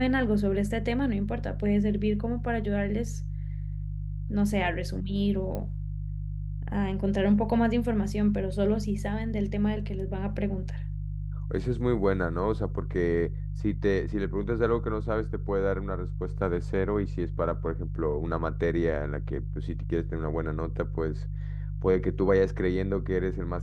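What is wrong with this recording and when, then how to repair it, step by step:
hum 50 Hz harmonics 3 -33 dBFS
5.55 s: pop -21 dBFS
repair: de-click; de-hum 50 Hz, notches 3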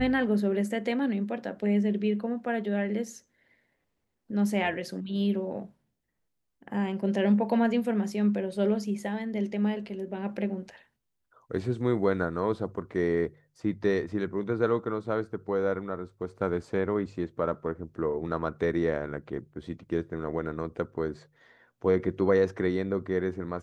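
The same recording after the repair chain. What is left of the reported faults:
nothing left

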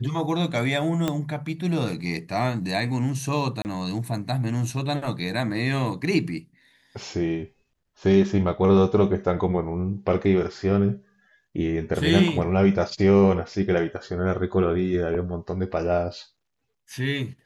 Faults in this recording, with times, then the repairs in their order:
1.08 s: pop -11 dBFS
3.62–3.65 s: dropout 29 ms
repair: de-click; interpolate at 3.62 s, 29 ms

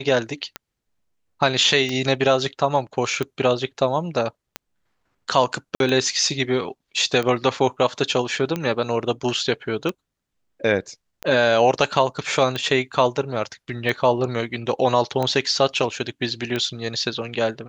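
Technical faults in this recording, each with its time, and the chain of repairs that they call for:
tick 45 rpm -12 dBFS
5.75–5.80 s: dropout 52 ms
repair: de-click; interpolate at 5.75 s, 52 ms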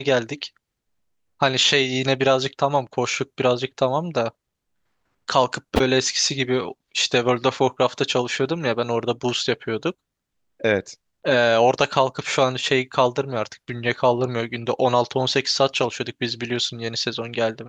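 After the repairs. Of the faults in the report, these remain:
nothing left

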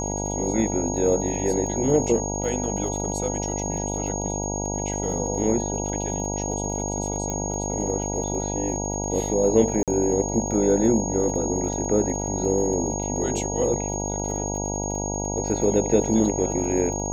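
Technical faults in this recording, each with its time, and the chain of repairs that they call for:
buzz 50 Hz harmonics 19 -29 dBFS
crackle 38 per s -33 dBFS
whine 6.6 kHz -30 dBFS
7.30 s: pop -15 dBFS
9.83–9.88 s: dropout 47 ms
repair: de-click; band-stop 6.6 kHz, Q 30; de-hum 50 Hz, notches 19; interpolate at 9.83 s, 47 ms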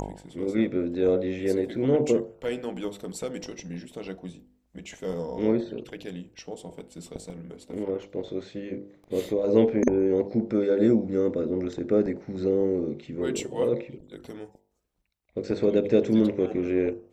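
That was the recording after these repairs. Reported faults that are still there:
7.30 s: pop

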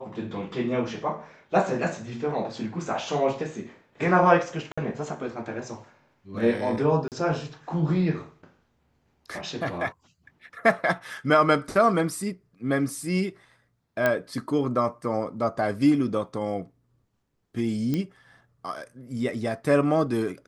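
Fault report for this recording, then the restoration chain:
4.72–4.78 s: dropout 55 ms
7.08–7.12 s: dropout 38 ms
14.06 s: pop -10 dBFS
17.94 s: pop -15 dBFS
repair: de-click; interpolate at 4.72 s, 55 ms; interpolate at 7.08 s, 38 ms

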